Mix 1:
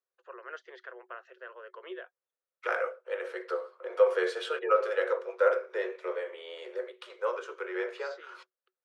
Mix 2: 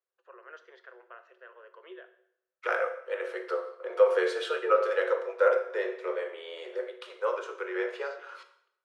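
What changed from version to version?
first voice −6.5 dB
reverb: on, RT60 0.70 s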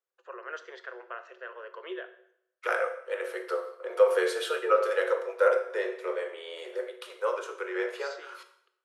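first voice +8.5 dB
master: remove high-frequency loss of the air 82 metres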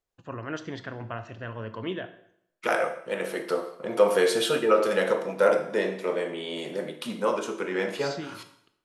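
master: remove Chebyshev high-pass with heavy ripple 360 Hz, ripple 9 dB

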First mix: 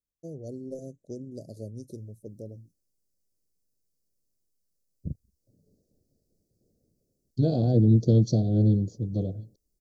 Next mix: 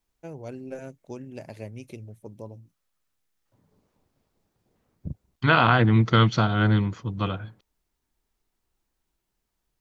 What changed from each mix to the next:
second voice: entry −1.95 s
master: remove inverse Chebyshev band-stop filter 920–3,000 Hz, stop band 40 dB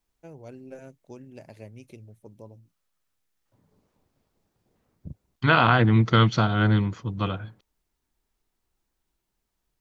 first voice −5.5 dB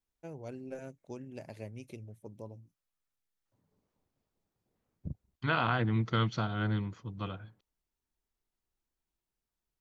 second voice −11.0 dB

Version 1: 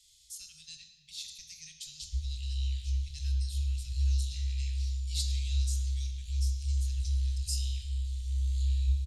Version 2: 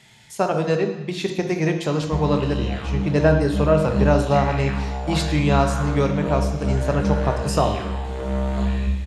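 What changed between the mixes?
speech +3.5 dB
master: remove inverse Chebyshev band-stop filter 270–960 Hz, stop band 80 dB

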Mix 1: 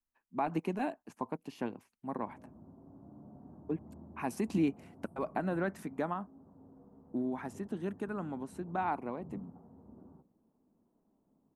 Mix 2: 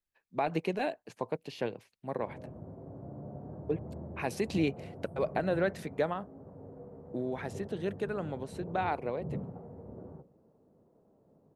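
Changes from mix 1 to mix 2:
background +7.5 dB
master: add graphic EQ with 10 bands 125 Hz +8 dB, 250 Hz −8 dB, 500 Hz +11 dB, 1,000 Hz −5 dB, 2,000 Hz +5 dB, 4,000 Hz +11 dB

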